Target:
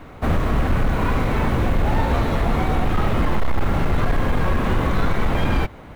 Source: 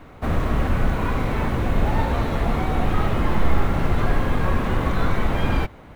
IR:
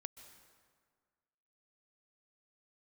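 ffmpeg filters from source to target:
-filter_complex "[0:a]asplit=2[link_01][link_02];[link_02]alimiter=limit=-13.5dB:level=0:latency=1:release=195,volume=1.5dB[link_03];[link_01][link_03]amix=inputs=2:normalize=0,volume=9.5dB,asoftclip=hard,volume=-9.5dB,volume=-3dB"

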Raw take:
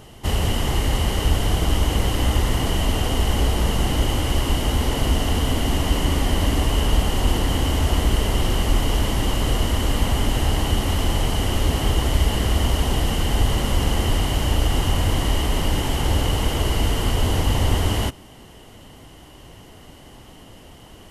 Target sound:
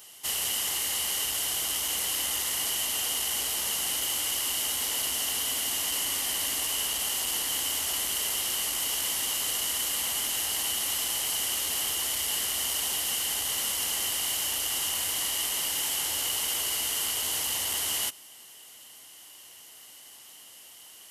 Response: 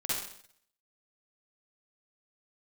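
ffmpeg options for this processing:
-af "acontrast=44,aderivative"

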